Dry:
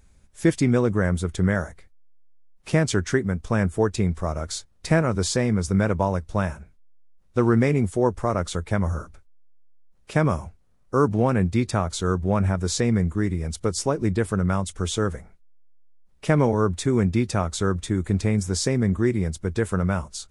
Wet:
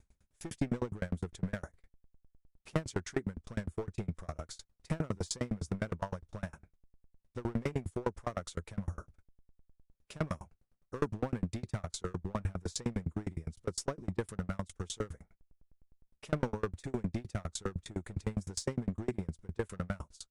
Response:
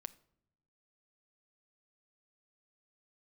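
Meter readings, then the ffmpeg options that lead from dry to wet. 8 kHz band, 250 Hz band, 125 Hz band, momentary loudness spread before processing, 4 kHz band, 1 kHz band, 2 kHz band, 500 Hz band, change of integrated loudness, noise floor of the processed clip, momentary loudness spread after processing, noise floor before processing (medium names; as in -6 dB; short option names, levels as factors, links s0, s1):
-13.0 dB, -15.5 dB, -15.0 dB, 7 LU, -13.5 dB, -15.5 dB, -16.0 dB, -15.5 dB, -15.0 dB, -80 dBFS, 8 LU, -57 dBFS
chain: -af "aeval=exprs='clip(val(0),-1,0.119)':c=same,aeval=exprs='val(0)*pow(10,-34*if(lt(mod(9.8*n/s,1),2*abs(9.8)/1000),1-mod(9.8*n/s,1)/(2*abs(9.8)/1000),(mod(9.8*n/s,1)-2*abs(9.8)/1000)/(1-2*abs(9.8)/1000))/20)':c=same,volume=0.596"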